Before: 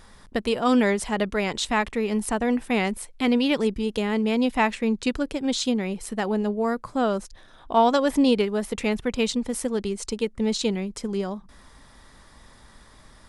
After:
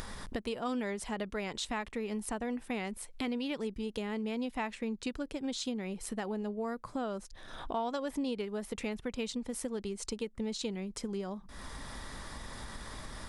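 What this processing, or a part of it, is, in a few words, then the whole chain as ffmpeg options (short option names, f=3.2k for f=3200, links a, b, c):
upward and downward compression: -af "acompressor=mode=upward:threshold=-35dB:ratio=2.5,acompressor=threshold=-39dB:ratio=3,volume=1dB"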